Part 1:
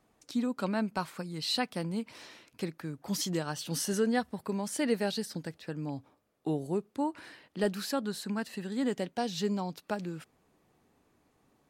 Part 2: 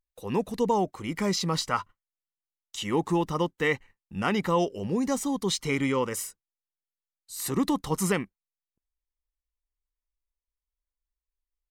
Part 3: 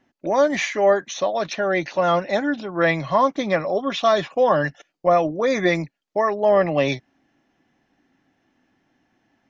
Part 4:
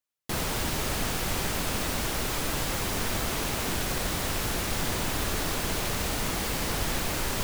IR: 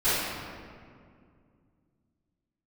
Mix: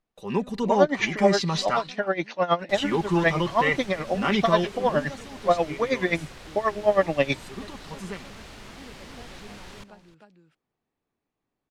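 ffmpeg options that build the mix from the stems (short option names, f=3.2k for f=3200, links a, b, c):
-filter_complex "[0:a]volume=-17dB,asplit=2[a][b];[b]volume=-3.5dB[c];[1:a]acontrast=48,aecho=1:1:5.1:0.64,volume=-6.5dB,afade=t=out:st=4.45:d=0.67:silence=0.223872,asplit=2[d][e];[e]volume=-22dB[f];[2:a]aeval=exprs='val(0)*pow(10,-19*(0.5-0.5*cos(2*PI*9.4*n/s))/20)':c=same,adelay=400,volume=0dB[g];[3:a]adelay=2400,volume=-14.5dB,asplit=2[h][i];[i]volume=-18dB[j];[c][f][j]amix=inputs=3:normalize=0,aecho=0:1:308:1[k];[a][d][g][h][k]amix=inputs=5:normalize=0,lowpass=3.2k,aemphasis=mode=production:type=75kf"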